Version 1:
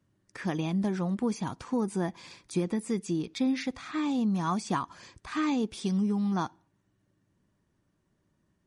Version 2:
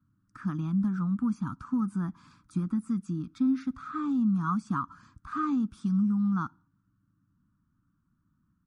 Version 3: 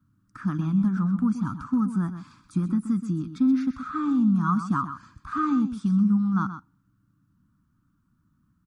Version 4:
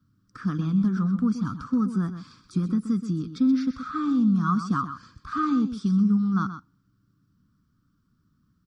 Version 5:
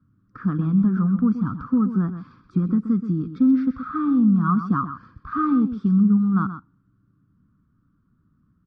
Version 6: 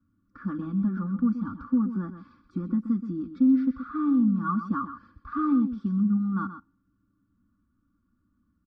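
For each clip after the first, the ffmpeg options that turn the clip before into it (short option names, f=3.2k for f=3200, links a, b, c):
-af "firequalizer=gain_entry='entry(280,0);entry(400,-27);entry(670,-23);entry(1300,6);entry(1900,-19);entry(9900,-15)':delay=0.05:min_phase=1,volume=2dB"
-af "aecho=1:1:126:0.299,volume=4.5dB"
-af "superequalizer=7b=3.16:9b=0.501:13b=1.78:14b=2.51:16b=0.631"
-af "lowpass=1.5k,volume=4dB"
-af "aecho=1:1:3.5:0.85,volume=-8dB"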